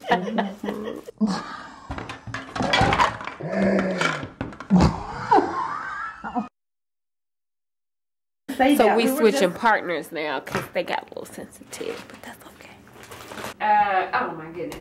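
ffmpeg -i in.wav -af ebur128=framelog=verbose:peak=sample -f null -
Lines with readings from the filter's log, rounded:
Integrated loudness:
  I:         -22.9 LUFS
  Threshold: -34.1 LUFS
Loudness range:
  LRA:         8.9 LU
  Threshold: -44.4 LUFS
  LRA low:   -30.8 LUFS
  LRA high:  -21.9 LUFS
Sample peak:
  Peak:       -7.5 dBFS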